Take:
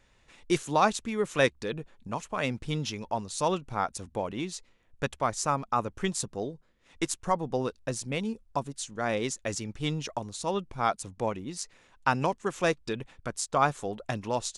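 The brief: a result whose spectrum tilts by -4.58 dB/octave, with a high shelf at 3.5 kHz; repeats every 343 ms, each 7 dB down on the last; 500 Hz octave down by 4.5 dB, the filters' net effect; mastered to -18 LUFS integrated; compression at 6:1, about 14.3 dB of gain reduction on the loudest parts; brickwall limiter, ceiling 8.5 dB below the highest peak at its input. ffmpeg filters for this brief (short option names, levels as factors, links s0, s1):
-af "equalizer=f=500:t=o:g=-5.5,highshelf=f=3500:g=-6,acompressor=threshold=0.0141:ratio=6,alimiter=level_in=2:limit=0.0631:level=0:latency=1,volume=0.501,aecho=1:1:343|686|1029|1372|1715:0.447|0.201|0.0905|0.0407|0.0183,volume=17.8"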